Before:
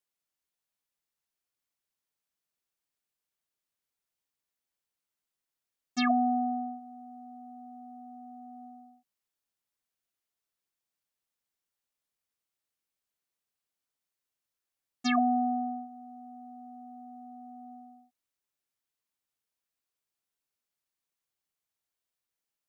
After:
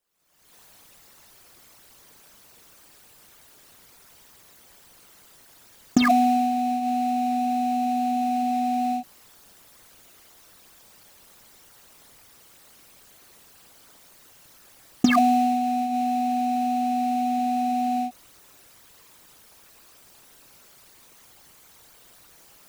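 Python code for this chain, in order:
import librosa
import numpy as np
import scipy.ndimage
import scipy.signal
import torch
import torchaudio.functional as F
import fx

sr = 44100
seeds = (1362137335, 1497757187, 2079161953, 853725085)

p1 = fx.envelope_sharpen(x, sr, power=2.0)
p2 = fx.recorder_agc(p1, sr, target_db=-25.5, rise_db_per_s=54.0, max_gain_db=30)
p3 = fx.sample_hold(p2, sr, seeds[0], rate_hz=3300.0, jitter_pct=20)
p4 = p2 + (p3 * librosa.db_to_amplitude(-11.0))
y = p4 * librosa.db_to_amplitude(5.5)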